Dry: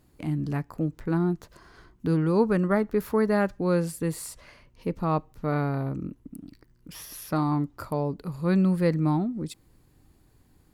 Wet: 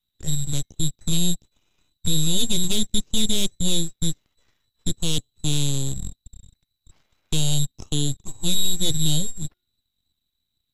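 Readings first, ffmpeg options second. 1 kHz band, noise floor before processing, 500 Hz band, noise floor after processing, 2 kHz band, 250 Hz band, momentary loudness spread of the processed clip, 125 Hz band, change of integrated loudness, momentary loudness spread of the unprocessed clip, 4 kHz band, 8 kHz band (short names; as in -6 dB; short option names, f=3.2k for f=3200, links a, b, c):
-15.5 dB, -62 dBFS, -10.0 dB, -79 dBFS, -5.5 dB, -3.0 dB, 10 LU, +1.5 dB, +2.0 dB, 15 LU, +23.5 dB, +19.0 dB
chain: -filter_complex "[0:a]lowpass=f=3.4k:t=q:w=0.5098,lowpass=f=3.4k:t=q:w=0.6013,lowpass=f=3.4k:t=q:w=0.9,lowpass=f=3.4k:t=q:w=2.563,afreqshift=-4000,lowshelf=f=81:g=-10.5,bandreject=f=358.5:t=h:w=4,bandreject=f=717:t=h:w=4,bandreject=f=1.0755k:t=h:w=4,bandreject=f=1.434k:t=h:w=4,bandreject=f=1.7925k:t=h:w=4,bandreject=f=2.151k:t=h:w=4,aeval=exprs='0.355*(cos(1*acos(clip(val(0)/0.355,-1,1)))-cos(1*PI/2))+0.00891*(cos(2*acos(clip(val(0)/0.355,-1,1)))-cos(2*PI/2))+0.141*(cos(5*acos(clip(val(0)/0.355,-1,1)))-cos(5*PI/2))+0.158*(cos(7*acos(clip(val(0)/0.355,-1,1)))-cos(7*PI/2))+0.112*(cos(8*acos(clip(val(0)/0.355,-1,1)))-cos(8*PI/2))':c=same,acrossover=split=590|2800[a][b][c];[b]acompressor=threshold=-46dB:ratio=6[d];[a][d][c]amix=inputs=3:normalize=0,acrusher=bits=4:mode=log:mix=0:aa=0.000001,lowshelf=f=330:g=10.5,acontrast=25,volume=-8.5dB" -ar 48000 -c:a mp2 -b:a 96k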